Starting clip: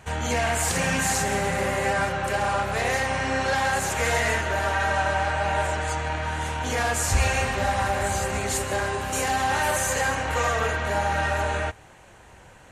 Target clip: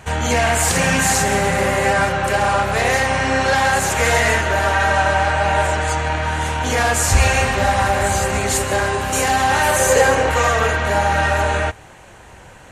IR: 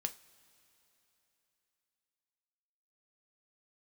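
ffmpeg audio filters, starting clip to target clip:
-filter_complex "[0:a]asettb=1/sr,asplit=3[a][b][c];[a]atrim=end=9.794[d];[b]atrim=start=9.79:end=10.3,asetpts=PTS-STARTPTS,afade=t=in:d=0.004:c=qsin,afade=t=out:st=0.506:d=0.004:c=qsin,equalizer=f=450:t=o:w=0.72:g=12[e];[c]atrim=start=10.296[f];[d][e]acrossfade=d=0.004:c1=hsin:c2=qsin[g];[g][f]acrossfade=d=0.004:c1=qsin:c2=hsin,volume=7.5dB"

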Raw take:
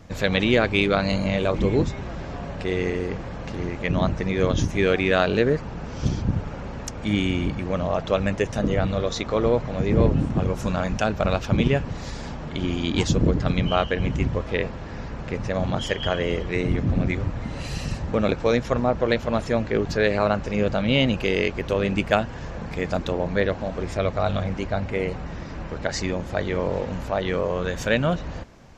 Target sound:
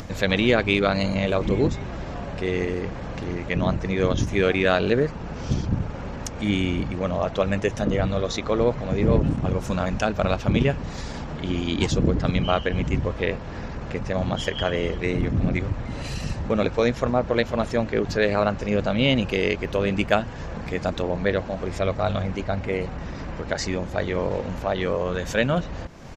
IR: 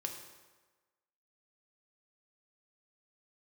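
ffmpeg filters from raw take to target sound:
-af "atempo=1.1,acompressor=mode=upward:threshold=-27dB:ratio=2.5,bandreject=f=54.3:t=h:w=4,bandreject=f=108.6:t=h:w=4,bandreject=f=162.9:t=h:w=4"

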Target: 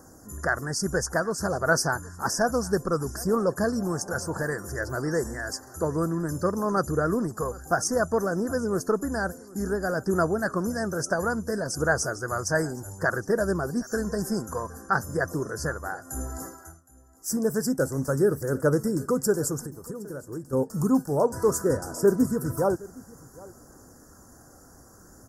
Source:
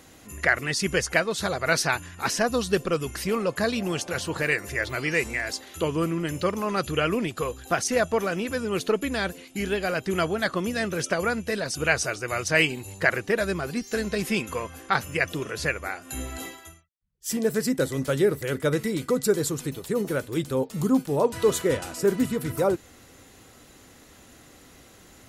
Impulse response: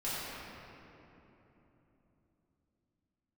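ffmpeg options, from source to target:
-filter_complex "[0:a]asettb=1/sr,asplit=3[a][b][c];[a]atrim=end=19.654[d];[b]atrim=start=19.65:end=20.53,asetpts=PTS-STARTPTS,afade=t=in:d=0.004:c=qsin,afade=t=out:st=0.876:d=0.004:c=qsin,acompressor=threshold=-35dB:ratio=6[e];[c]atrim=start=20.526[f];[d][e]acrossfade=d=0.004:c1=hsin:c2=qsin[g];[g][f]acrossfade=d=0.004:c1=qsin:c2=hsin,aphaser=in_gain=1:out_gain=1:delay=1.5:decay=0.22:speed=0.59:type=triangular,asuperstop=centerf=2900:order=12:qfactor=0.87,aecho=1:1:766:0.0794"

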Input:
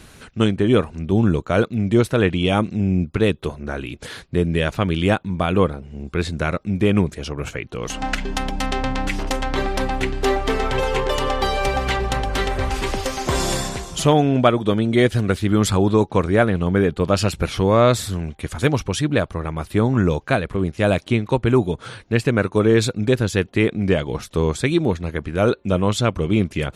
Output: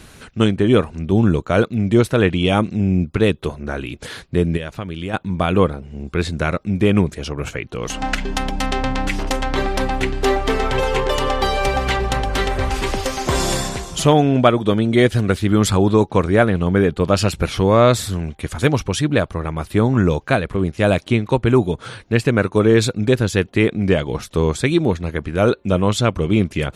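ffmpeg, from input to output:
-filter_complex "[0:a]asplit=3[a][b][c];[a]afade=t=out:st=4.56:d=0.02[d];[b]acompressor=threshold=-27dB:ratio=5,afade=t=in:st=4.56:d=0.02,afade=t=out:st=5.13:d=0.02[e];[c]afade=t=in:st=5.13:d=0.02[f];[d][e][f]amix=inputs=3:normalize=0,volume=2dB"

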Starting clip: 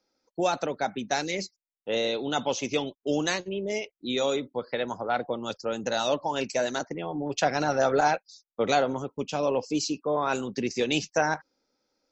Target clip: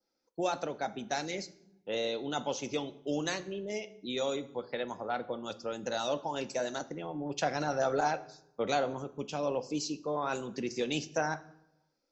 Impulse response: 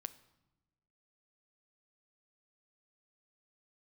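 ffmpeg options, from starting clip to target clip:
-filter_complex "[0:a]adynamicequalizer=threshold=0.00501:dfrequency=2300:dqfactor=1.6:tfrequency=2300:tqfactor=1.6:attack=5:release=100:ratio=0.375:range=2:mode=cutabove:tftype=bell[a];[1:a]atrim=start_sample=2205,asetrate=57330,aresample=44100[b];[a][b]afir=irnorm=-1:irlink=0"

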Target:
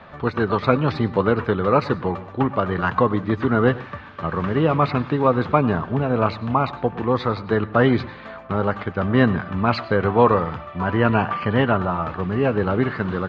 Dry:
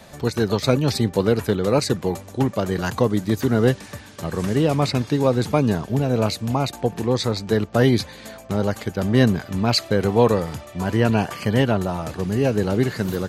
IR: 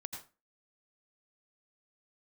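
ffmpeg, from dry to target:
-filter_complex "[0:a]lowpass=f=3.2k:w=0.5412,lowpass=f=3.2k:w=1.3066,equalizer=f=1.2k:t=o:w=0.76:g=11.5,asplit=2[a][b];[1:a]atrim=start_sample=2205,adelay=12[c];[b][c]afir=irnorm=-1:irlink=0,volume=-10.5dB[d];[a][d]amix=inputs=2:normalize=0,volume=-1dB"

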